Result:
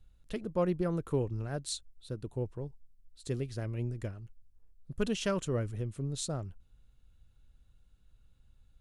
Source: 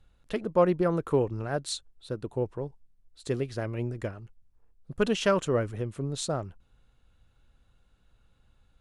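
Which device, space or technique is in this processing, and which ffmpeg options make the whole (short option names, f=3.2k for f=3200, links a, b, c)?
smiley-face EQ: -af "lowshelf=f=120:g=8,equalizer=f=960:t=o:w=2.6:g=-5.5,highshelf=f=5.9k:g=5,volume=-5dB"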